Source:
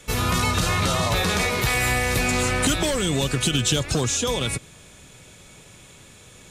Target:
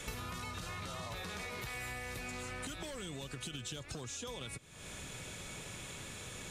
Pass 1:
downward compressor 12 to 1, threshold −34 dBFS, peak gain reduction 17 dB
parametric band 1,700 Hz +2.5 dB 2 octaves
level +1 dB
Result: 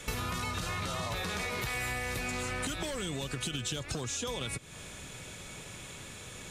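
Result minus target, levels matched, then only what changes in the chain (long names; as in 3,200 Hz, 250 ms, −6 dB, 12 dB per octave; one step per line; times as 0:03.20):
downward compressor: peak gain reduction −8 dB
change: downward compressor 12 to 1, threshold −42.5 dBFS, peak gain reduction 25 dB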